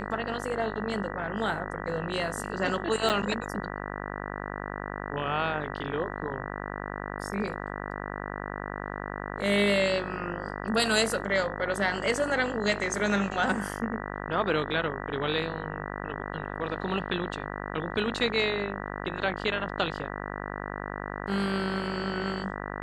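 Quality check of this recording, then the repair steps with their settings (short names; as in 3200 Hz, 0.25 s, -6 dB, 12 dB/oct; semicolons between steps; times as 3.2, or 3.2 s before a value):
buzz 50 Hz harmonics 39 -36 dBFS
3.09–3.1 gap 8.9 ms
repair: de-hum 50 Hz, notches 39; interpolate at 3.09, 8.9 ms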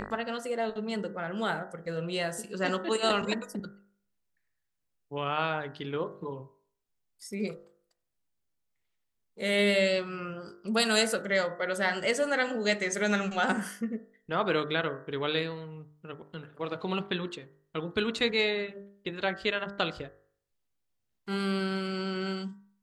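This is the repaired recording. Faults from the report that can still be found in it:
none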